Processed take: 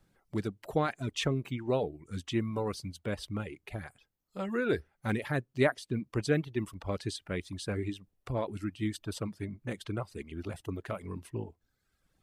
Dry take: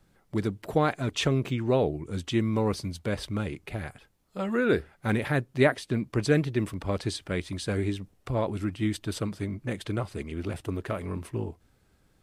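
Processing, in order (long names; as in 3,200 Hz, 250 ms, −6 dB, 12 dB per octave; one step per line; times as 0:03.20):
reverb reduction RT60 1 s
level −4.5 dB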